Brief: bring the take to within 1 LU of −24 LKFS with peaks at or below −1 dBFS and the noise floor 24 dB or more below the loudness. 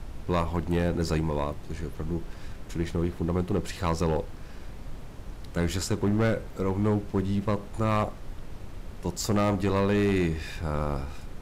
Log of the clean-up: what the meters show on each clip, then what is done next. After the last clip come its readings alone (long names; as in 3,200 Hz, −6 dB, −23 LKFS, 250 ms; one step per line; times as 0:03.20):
share of clipped samples 1.5%; peaks flattened at −19.0 dBFS; background noise floor −42 dBFS; target noise floor −53 dBFS; integrated loudness −28.5 LKFS; sample peak −19.0 dBFS; target loudness −24.0 LKFS
→ clipped peaks rebuilt −19 dBFS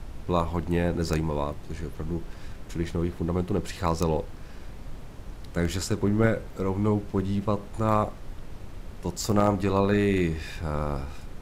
share of clipped samples 0.0%; background noise floor −42 dBFS; target noise floor −52 dBFS
→ noise reduction from a noise print 10 dB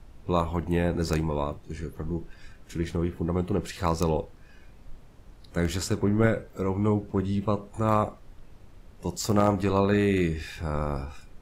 background noise floor −51 dBFS; target noise floor −52 dBFS
→ noise reduction from a noise print 6 dB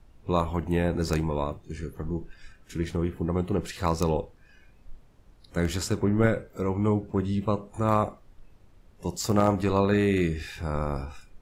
background noise floor −56 dBFS; integrated loudness −27.5 LKFS; sample peak −10.0 dBFS; target loudness −24.0 LKFS
→ level +3.5 dB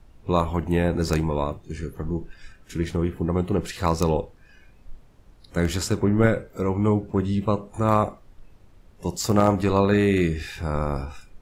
integrated loudness −24.0 LKFS; sample peak −6.5 dBFS; background noise floor −53 dBFS